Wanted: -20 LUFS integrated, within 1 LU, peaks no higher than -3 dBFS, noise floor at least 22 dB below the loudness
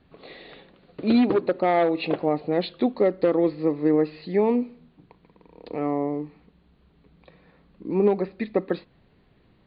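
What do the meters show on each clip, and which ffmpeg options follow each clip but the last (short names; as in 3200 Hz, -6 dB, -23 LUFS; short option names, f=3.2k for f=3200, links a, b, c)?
loudness -24.0 LUFS; peak -8.0 dBFS; loudness target -20.0 LUFS
-> -af "volume=4dB"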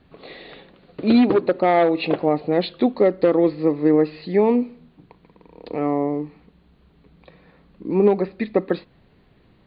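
loudness -20.0 LUFS; peak -4.0 dBFS; noise floor -57 dBFS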